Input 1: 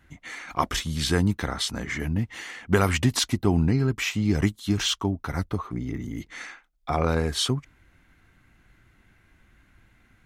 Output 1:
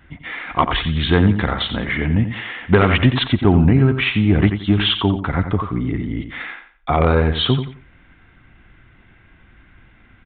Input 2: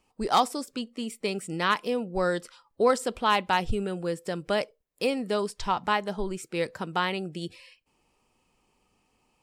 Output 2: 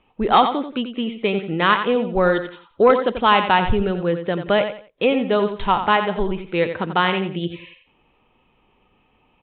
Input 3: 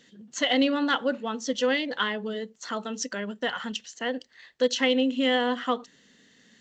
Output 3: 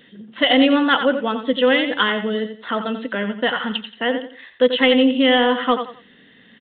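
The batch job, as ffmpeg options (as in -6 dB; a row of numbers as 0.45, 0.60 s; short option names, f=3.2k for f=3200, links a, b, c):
-af "aecho=1:1:88|176|264:0.335|0.0904|0.0244,aresample=8000,aeval=exprs='0.631*sin(PI/2*1.78*val(0)/0.631)':c=same,aresample=44100"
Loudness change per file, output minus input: +8.0, +8.5, +8.5 LU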